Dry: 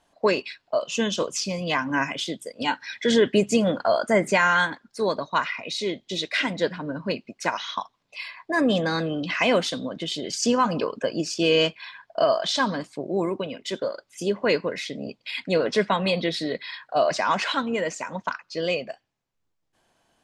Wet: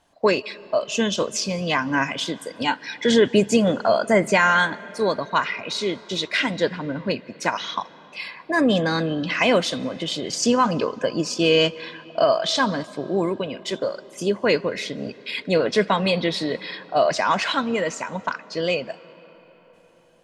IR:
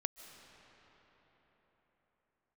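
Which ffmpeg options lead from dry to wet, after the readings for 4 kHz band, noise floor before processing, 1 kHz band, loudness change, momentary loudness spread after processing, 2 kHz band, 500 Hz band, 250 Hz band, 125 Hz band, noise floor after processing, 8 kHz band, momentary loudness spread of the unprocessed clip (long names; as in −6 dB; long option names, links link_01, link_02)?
+2.5 dB, −74 dBFS, +2.5 dB, +2.5 dB, 11 LU, +2.5 dB, +2.5 dB, +3.0 dB, +3.5 dB, −51 dBFS, +2.5 dB, 11 LU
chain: -filter_complex "[0:a]equalizer=frequency=100:width=1.6:gain=4,asplit=2[link_01][link_02];[1:a]atrim=start_sample=2205[link_03];[link_02][link_03]afir=irnorm=-1:irlink=0,volume=-8.5dB[link_04];[link_01][link_04]amix=inputs=2:normalize=0"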